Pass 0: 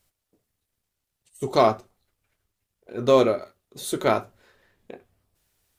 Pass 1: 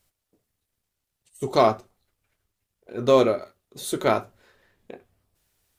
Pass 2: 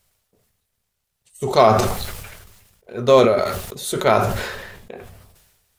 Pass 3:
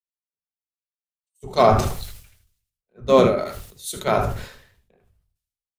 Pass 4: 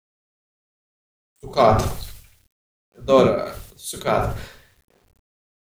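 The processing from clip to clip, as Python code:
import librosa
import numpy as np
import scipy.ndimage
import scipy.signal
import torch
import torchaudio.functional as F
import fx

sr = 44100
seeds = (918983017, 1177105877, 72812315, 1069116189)

y1 = x
y2 = fx.peak_eq(y1, sr, hz=300.0, db=-13.5, octaves=0.29)
y2 = fx.sustainer(y2, sr, db_per_s=43.0)
y2 = F.gain(torch.from_numpy(y2), 5.0).numpy()
y3 = fx.octave_divider(y2, sr, octaves=1, level_db=-1.0)
y3 = y3 + 10.0 ** (-10.0 / 20.0) * np.pad(y3, (int(76 * sr / 1000.0), 0))[:len(y3)]
y3 = fx.band_widen(y3, sr, depth_pct=100)
y3 = F.gain(torch.from_numpy(y3), -8.0).numpy()
y4 = fx.quant_dither(y3, sr, seeds[0], bits=10, dither='none')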